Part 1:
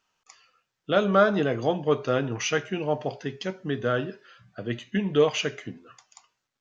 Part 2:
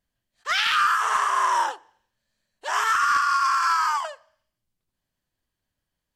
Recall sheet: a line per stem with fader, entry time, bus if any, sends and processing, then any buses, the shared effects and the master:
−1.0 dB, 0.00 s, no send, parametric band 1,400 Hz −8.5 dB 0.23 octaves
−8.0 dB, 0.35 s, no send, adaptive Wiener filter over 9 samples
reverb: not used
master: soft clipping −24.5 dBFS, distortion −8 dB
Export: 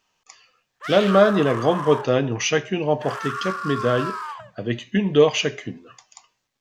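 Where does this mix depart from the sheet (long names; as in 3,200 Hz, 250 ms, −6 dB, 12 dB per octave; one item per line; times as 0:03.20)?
stem 1 −1.0 dB → +5.5 dB
master: missing soft clipping −24.5 dBFS, distortion −8 dB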